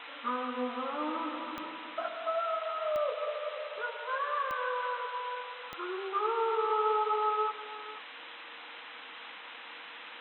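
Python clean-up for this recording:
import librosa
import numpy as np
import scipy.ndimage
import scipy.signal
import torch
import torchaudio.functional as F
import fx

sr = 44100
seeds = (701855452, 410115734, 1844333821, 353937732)

y = fx.fix_declick_ar(x, sr, threshold=10.0)
y = fx.notch(y, sr, hz=470.0, q=30.0)
y = fx.noise_reduce(y, sr, print_start_s=8.03, print_end_s=8.53, reduce_db=30.0)
y = fx.fix_echo_inverse(y, sr, delay_ms=483, level_db=-15.0)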